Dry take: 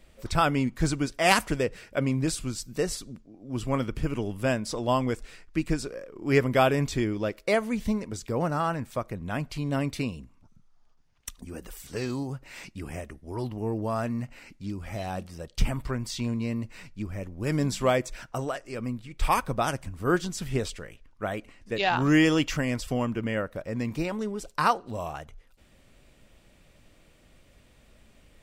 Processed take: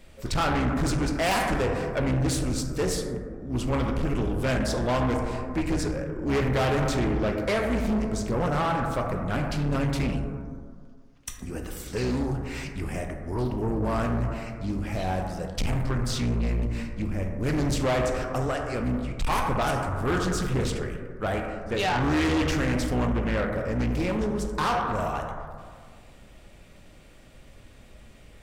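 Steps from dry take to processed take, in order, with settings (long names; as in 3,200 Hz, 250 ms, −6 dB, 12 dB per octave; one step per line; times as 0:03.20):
sub-octave generator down 2 octaves, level −4 dB
in parallel at −3 dB: brickwall limiter −15 dBFS, peak gain reduction 7.5 dB
on the sum: dense smooth reverb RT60 1.8 s, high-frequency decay 0.25×, DRR 3 dB
soft clipping −21 dBFS, distortion −8 dB
highs frequency-modulated by the lows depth 0.24 ms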